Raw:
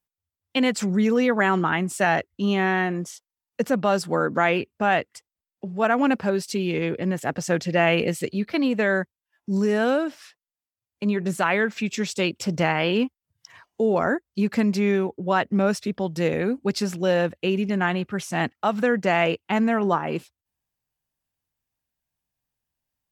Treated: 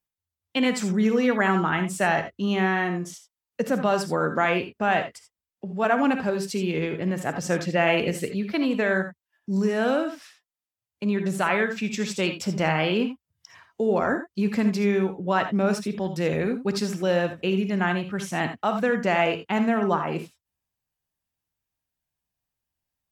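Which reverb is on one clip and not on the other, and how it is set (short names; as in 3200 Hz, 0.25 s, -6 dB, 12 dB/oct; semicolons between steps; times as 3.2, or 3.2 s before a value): non-linear reverb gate 0.1 s rising, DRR 7 dB; gain -2 dB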